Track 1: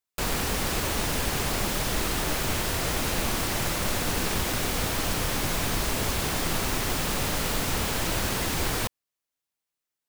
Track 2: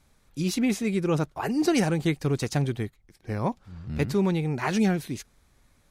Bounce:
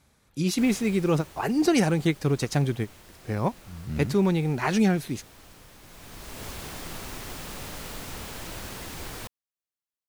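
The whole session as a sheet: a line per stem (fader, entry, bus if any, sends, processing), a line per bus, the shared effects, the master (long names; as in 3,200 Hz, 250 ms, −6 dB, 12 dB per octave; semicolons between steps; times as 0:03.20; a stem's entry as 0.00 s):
−10.5 dB, 0.40 s, no send, automatic ducking −13 dB, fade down 1.55 s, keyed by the second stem
+1.5 dB, 0.00 s, no send, high-pass filter 55 Hz; every ending faded ahead of time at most 510 dB per second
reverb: not used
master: no processing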